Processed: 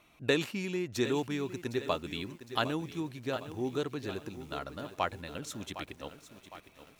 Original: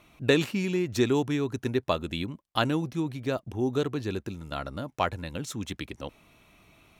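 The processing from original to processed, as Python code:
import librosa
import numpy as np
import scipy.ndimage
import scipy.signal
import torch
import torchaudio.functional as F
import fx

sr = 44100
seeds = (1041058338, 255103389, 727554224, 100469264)

y = fx.low_shelf(x, sr, hz=280.0, db=-6.0)
y = fx.echo_crushed(y, sr, ms=759, feedback_pct=55, bits=8, wet_db=-12)
y = F.gain(torch.from_numpy(y), -4.0).numpy()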